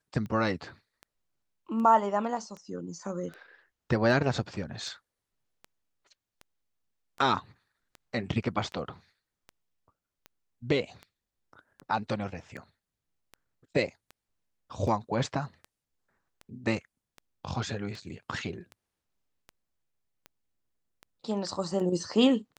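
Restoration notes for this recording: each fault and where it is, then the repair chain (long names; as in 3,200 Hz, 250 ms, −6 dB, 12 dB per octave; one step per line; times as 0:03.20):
scratch tick 78 rpm −29 dBFS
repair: click removal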